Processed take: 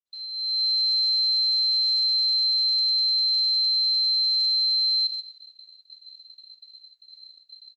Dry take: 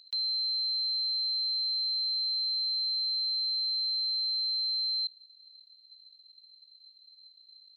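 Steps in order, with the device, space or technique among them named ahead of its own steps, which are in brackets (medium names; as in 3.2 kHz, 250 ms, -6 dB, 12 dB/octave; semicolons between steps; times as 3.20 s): speakerphone in a meeting room (reverberation RT60 0.80 s, pre-delay 22 ms, DRR -1.5 dB; speakerphone echo 140 ms, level -14 dB; level rider gain up to 16 dB; gate -38 dBFS, range -42 dB; trim -8.5 dB; Opus 12 kbps 48 kHz)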